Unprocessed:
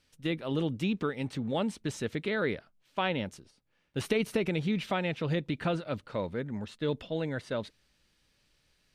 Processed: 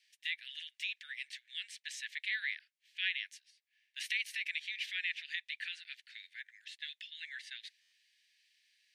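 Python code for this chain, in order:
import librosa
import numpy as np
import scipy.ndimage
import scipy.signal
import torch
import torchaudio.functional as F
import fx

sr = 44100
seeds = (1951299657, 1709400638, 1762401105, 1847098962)

y = scipy.signal.sosfilt(scipy.signal.butter(16, 1700.0, 'highpass', fs=sr, output='sos'), x)
y = fx.high_shelf(y, sr, hz=6000.0, db=-10.0)
y = fx.buffer_glitch(y, sr, at_s=(7.81,), block=512, repeats=8)
y = F.gain(torch.from_numpy(y), 3.5).numpy()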